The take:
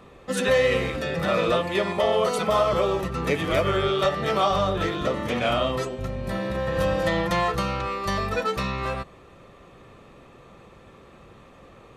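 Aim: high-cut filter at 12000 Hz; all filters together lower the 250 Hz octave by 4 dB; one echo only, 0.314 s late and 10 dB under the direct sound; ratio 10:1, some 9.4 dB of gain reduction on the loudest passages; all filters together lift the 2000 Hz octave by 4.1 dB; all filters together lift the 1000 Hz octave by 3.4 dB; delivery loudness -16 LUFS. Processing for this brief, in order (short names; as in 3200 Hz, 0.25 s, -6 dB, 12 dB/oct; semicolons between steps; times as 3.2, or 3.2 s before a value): LPF 12000 Hz; bell 250 Hz -6.5 dB; bell 1000 Hz +3.5 dB; bell 2000 Hz +4 dB; compressor 10:1, threshold -25 dBFS; echo 0.314 s -10 dB; gain +12.5 dB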